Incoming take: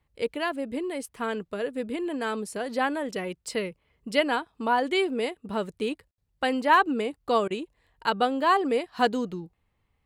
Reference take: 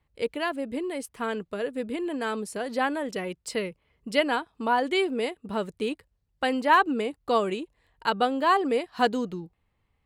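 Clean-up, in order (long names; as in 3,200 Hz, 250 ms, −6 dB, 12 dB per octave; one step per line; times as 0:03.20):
ambience match 0:06.11–0:06.18
repair the gap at 0:07.48, 23 ms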